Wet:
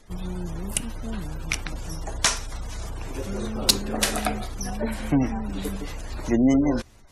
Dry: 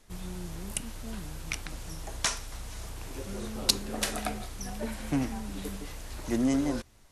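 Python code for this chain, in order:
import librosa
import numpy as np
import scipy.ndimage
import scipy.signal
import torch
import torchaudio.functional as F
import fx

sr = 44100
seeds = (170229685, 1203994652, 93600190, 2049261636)

y = np.clip(10.0 ** (12.0 / 20.0) * x, -1.0, 1.0) / 10.0 ** (12.0 / 20.0)
y = fx.spec_gate(y, sr, threshold_db=-30, keep='strong')
y = y * librosa.db_to_amplitude(7.5)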